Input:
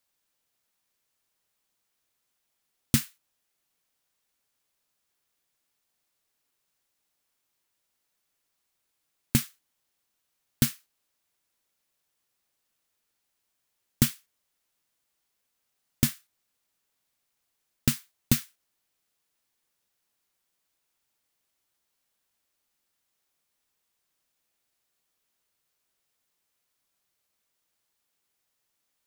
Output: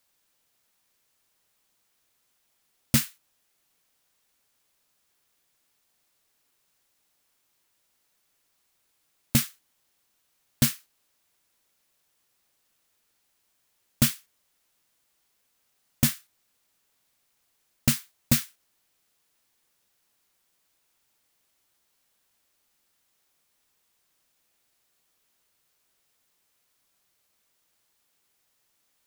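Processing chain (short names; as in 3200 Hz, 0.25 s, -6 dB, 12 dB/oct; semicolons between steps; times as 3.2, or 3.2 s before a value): soft clip -19 dBFS, distortion -7 dB; gain +6.5 dB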